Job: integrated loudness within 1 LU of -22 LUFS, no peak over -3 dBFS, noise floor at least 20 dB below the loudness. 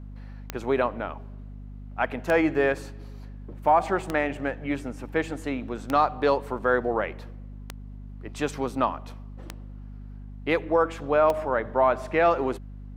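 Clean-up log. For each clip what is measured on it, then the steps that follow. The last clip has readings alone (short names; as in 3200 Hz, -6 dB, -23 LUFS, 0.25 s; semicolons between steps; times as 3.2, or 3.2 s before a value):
clicks 7; hum 50 Hz; harmonics up to 250 Hz; hum level -37 dBFS; loudness -26.0 LUFS; peak -10.5 dBFS; loudness target -22.0 LUFS
-> de-click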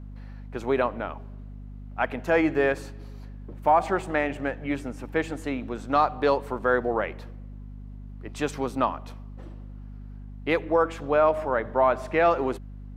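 clicks 0; hum 50 Hz; harmonics up to 250 Hz; hum level -37 dBFS
-> notches 50/100/150/200/250 Hz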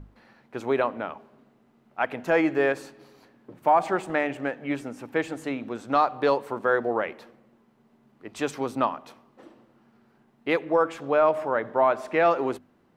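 hum none; loudness -26.0 LUFS; peak -10.5 dBFS; loudness target -22.0 LUFS
-> gain +4 dB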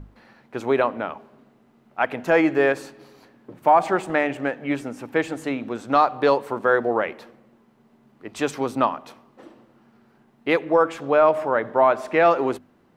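loudness -22.0 LUFS; peak -6.5 dBFS; noise floor -59 dBFS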